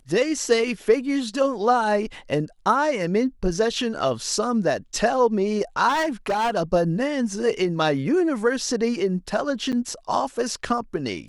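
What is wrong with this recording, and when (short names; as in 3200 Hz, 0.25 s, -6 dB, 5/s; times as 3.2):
5.88–6.51 clipped -19 dBFS
9.72–9.73 gap 8.2 ms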